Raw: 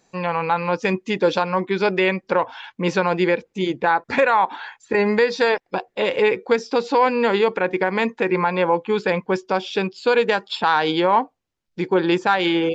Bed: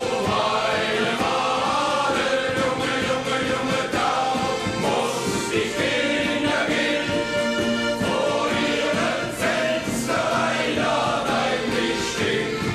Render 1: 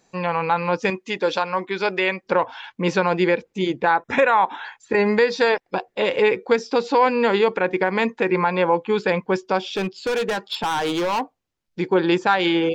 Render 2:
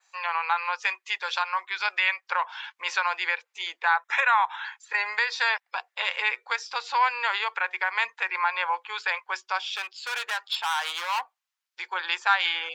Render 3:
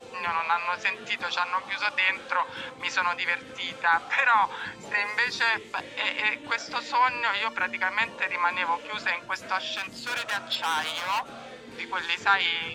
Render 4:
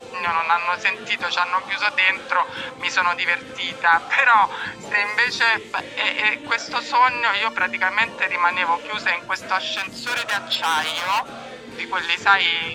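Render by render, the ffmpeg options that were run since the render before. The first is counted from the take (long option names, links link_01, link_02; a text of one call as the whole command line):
ffmpeg -i in.wav -filter_complex "[0:a]asettb=1/sr,asplit=3[link_01][link_02][link_03];[link_01]atrim=end=0.904[link_04];[link_02]atrim=start=0.9:end=2.26,asetpts=PTS-STARTPTS,afade=type=in:duration=0.004:curve=qsin,afade=type=out:start_time=1.356:duration=0.004:curve=qsin,lowshelf=frequency=330:gain=-11[link_05];[link_03]atrim=start=2.256[link_06];[link_04][link_05]acrossfade=duration=0.004:curve1=hsin:curve2=qsin[link_07];[link_07][link_06]acrossfade=duration=0.004:curve1=qsin:curve2=hsin,asettb=1/sr,asplit=3[link_08][link_09][link_10];[link_08]atrim=end=3.964[link_11];[link_09]atrim=start=3.96:end=4.65,asetpts=PTS-STARTPTS,afade=type=in:duration=0.004:curve=qsin,afade=type=out:start_time=0.686:duration=0.004:curve=qsin,asuperstop=centerf=4500:order=12:qfactor=5.1[link_12];[link_10]atrim=start=4.646[link_13];[link_11][link_12]acrossfade=duration=0.004:curve1=hsin:curve2=qsin[link_14];[link_14][link_13]acrossfade=duration=0.004:curve1=qsin:curve2=hsin,asplit=3[link_15][link_16][link_17];[link_15]afade=type=out:start_time=9.74:duration=0.02[link_18];[link_16]asoftclip=type=hard:threshold=-19.5dB,afade=type=in:start_time=9.74:duration=0.02,afade=type=out:start_time=11.2:duration=0.02[link_19];[link_17]afade=type=in:start_time=11.2:duration=0.02[link_20];[link_18][link_19][link_20]amix=inputs=3:normalize=0" out.wav
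ffmpeg -i in.wav -af "highpass=frequency=1000:width=0.5412,highpass=frequency=1000:width=1.3066,adynamicequalizer=threshold=0.00562:dfrequency=5600:dqfactor=1.7:tfrequency=5600:tqfactor=1.7:attack=5:release=100:ratio=0.375:range=2:mode=cutabove:tftype=bell" out.wav
ffmpeg -i in.wav -i bed.wav -filter_complex "[1:a]volume=-20.5dB[link_01];[0:a][link_01]amix=inputs=2:normalize=0" out.wav
ffmpeg -i in.wav -af "volume=6.5dB" out.wav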